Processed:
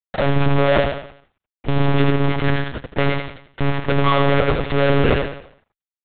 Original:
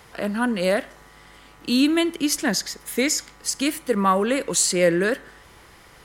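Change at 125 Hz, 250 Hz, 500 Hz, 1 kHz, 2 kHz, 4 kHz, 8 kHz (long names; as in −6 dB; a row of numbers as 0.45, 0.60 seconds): +15.5 dB, +0.5 dB, +4.5 dB, +5.0 dB, +3.5 dB, −1.5 dB, below −40 dB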